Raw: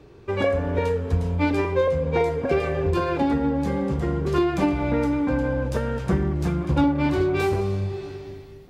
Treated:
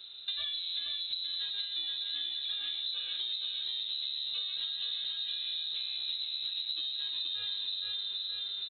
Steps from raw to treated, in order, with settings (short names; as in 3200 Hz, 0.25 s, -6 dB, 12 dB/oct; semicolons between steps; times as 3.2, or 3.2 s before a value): bell 2000 Hz -6 dB 2 oct; on a send: feedback echo 0.473 s, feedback 35%, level -4 dB; on the sum: inverted band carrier 4000 Hz; compressor 8:1, threshold -34 dBFS, peak gain reduction 19 dB